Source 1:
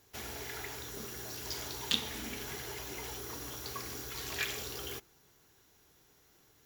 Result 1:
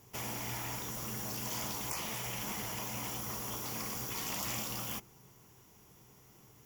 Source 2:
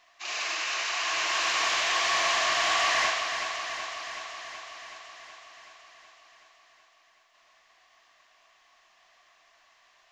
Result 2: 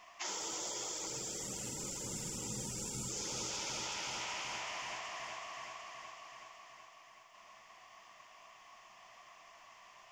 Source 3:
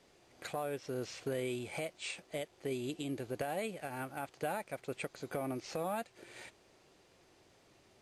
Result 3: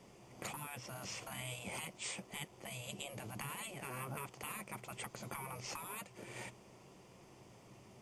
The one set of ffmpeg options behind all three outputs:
-af "afftfilt=real='re*lt(hypot(re,im),0.0224)':imag='im*lt(hypot(re,im),0.0224)':win_size=1024:overlap=0.75,equalizer=frequency=125:width_type=o:width=0.33:gain=11,equalizer=frequency=200:width_type=o:width=0.33:gain=10,equalizer=frequency=1000:width_type=o:width=0.33:gain=5,equalizer=frequency=1600:width_type=o:width=0.33:gain=-8,equalizer=frequency=4000:width_type=o:width=0.33:gain=-11,volume=4.5dB"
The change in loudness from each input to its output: +1.5, −13.5, −5.0 LU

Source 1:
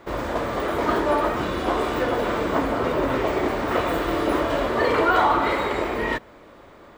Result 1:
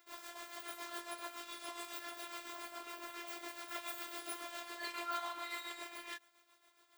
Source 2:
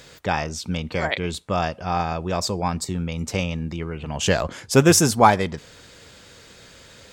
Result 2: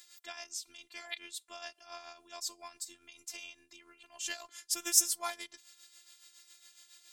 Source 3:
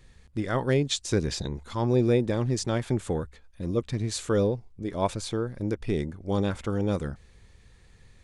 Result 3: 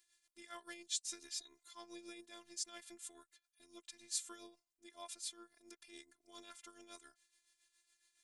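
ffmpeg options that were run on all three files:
-af "aderivative,tremolo=f=7.2:d=0.6,afftfilt=real='hypot(re,im)*cos(PI*b)':imag='0':win_size=512:overlap=0.75"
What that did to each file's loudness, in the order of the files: −21.5, −13.0, −18.5 LU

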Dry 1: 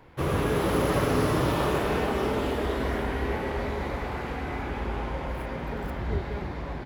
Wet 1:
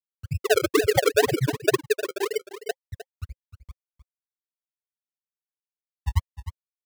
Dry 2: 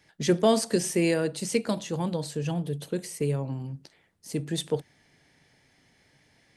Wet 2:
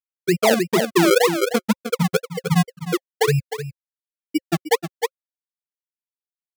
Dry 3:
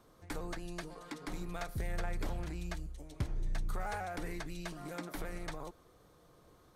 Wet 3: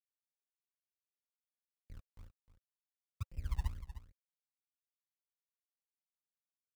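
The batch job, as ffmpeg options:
-filter_complex "[0:a]asplit=2[link_01][link_02];[link_02]acompressor=threshold=-36dB:ratio=20,volume=2dB[link_03];[link_01][link_03]amix=inputs=2:normalize=0,bandreject=frequency=50:width_type=h:width=6,bandreject=frequency=100:width_type=h:width=6,bandreject=frequency=150:width_type=h:width=6,bandreject=frequency=200:width_type=h:width=6,bandreject=frequency=250:width_type=h:width=6,afftfilt=real='re*gte(hypot(re,im),0.562)':imag='im*gte(hypot(re,im),0.562)':win_size=1024:overlap=0.75,highpass=84,equalizer=frequency=530:width_type=o:width=0.25:gain=11,bandreject=frequency=2300:width=19,acrossover=split=570[link_04][link_05];[link_04]aeval=exprs='val(0)*(1-0.5/2+0.5/2*cos(2*PI*1.1*n/s))':channel_layout=same[link_06];[link_05]aeval=exprs='val(0)*(1-0.5/2-0.5/2*cos(2*PI*1.1*n/s))':channel_layout=same[link_07];[link_06][link_07]amix=inputs=2:normalize=0,acrusher=samples=33:mix=1:aa=0.000001:lfo=1:lforange=33:lforate=2,asplit=2[link_08][link_09];[link_09]aecho=0:1:307:0.237[link_10];[link_08][link_10]amix=inputs=2:normalize=0,alimiter=level_in=24dB:limit=-1dB:release=50:level=0:latency=1,volume=-9dB"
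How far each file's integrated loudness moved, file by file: +3.5, +7.5, −2.0 LU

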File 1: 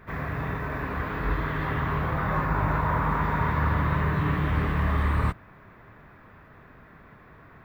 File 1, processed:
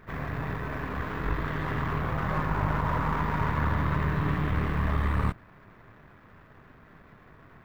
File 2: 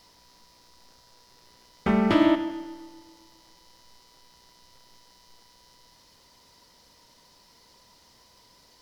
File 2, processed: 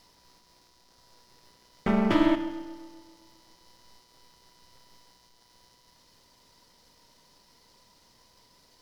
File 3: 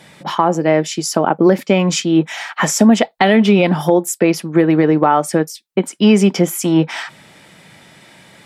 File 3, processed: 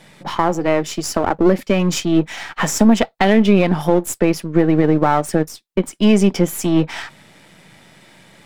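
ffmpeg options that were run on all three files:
-af "aeval=exprs='if(lt(val(0),0),0.447*val(0),val(0))':channel_layout=same,equalizer=frequency=180:width_type=o:width=2.9:gain=2,volume=-1dB"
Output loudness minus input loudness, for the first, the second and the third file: −2.5, −2.5, −2.0 LU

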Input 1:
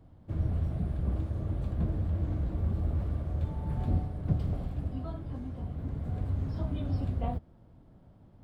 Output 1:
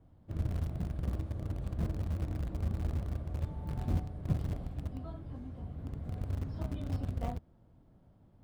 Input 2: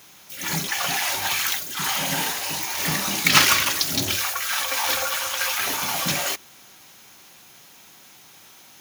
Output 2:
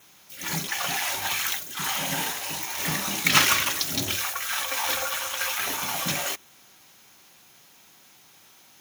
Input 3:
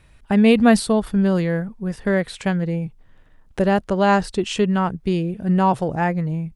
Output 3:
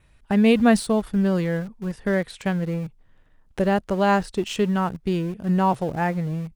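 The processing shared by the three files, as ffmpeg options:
-filter_complex "[0:a]adynamicequalizer=threshold=0.00398:dfrequency=4700:dqfactor=7.6:tfrequency=4700:tqfactor=7.6:attack=5:release=100:ratio=0.375:range=3:mode=cutabove:tftype=bell,asplit=2[link_01][link_02];[link_02]aeval=exprs='val(0)*gte(abs(val(0)),0.0531)':channel_layout=same,volume=-9dB[link_03];[link_01][link_03]amix=inputs=2:normalize=0,volume=-5.5dB"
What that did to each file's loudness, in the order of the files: −4.5, −3.5, −3.0 LU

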